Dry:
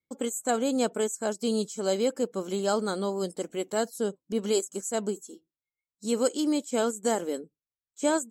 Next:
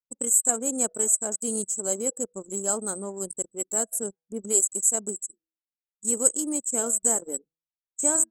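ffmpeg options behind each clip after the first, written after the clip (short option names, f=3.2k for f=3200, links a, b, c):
-af "highshelf=f=5.9k:t=q:w=3:g=13.5,bandreject=f=162.2:t=h:w=4,bandreject=f=324.4:t=h:w=4,bandreject=f=486.6:t=h:w=4,bandreject=f=648.8:t=h:w=4,bandreject=f=811:t=h:w=4,bandreject=f=973.2:t=h:w=4,bandreject=f=1.1354k:t=h:w=4,bandreject=f=1.2976k:t=h:w=4,bandreject=f=1.4598k:t=h:w=4,bandreject=f=1.622k:t=h:w=4,bandreject=f=1.7842k:t=h:w=4,bandreject=f=1.9464k:t=h:w=4,anlmdn=100,volume=-4.5dB"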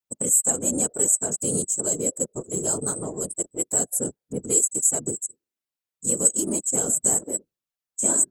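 -filter_complex "[0:a]asplit=2[a][b];[b]alimiter=limit=-16.5dB:level=0:latency=1:release=35,volume=-1dB[c];[a][c]amix=inputs=2:normalize=0,afftfilt=real='hypot(re,im)*cos(2*PI*random(0))':imag='hypot(re,im)*sin(2*PI*random(1))':win_size=512:overlap=0.75,acrossover=split=430|3000[d][e][f];[e]acompressor=threshold=-38dB:ratio=6[g];[d][g][f]amix=inputs=3:normalize=0,volume=4.5dB"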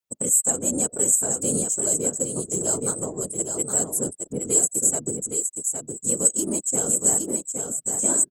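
-af "aecho=1:1:816:0.531"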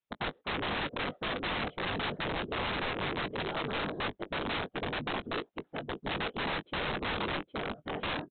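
-filter_complex "[0:a]aresample=8000,aeval=exprs='(mod(26.6*val(0)+1,2)-1)/26.6':c=same,aresample=44100,asplit=2[a][b];[b]adelay=20,volume=-14dB[c];[a][c]amix=inputs=2:normalize=0"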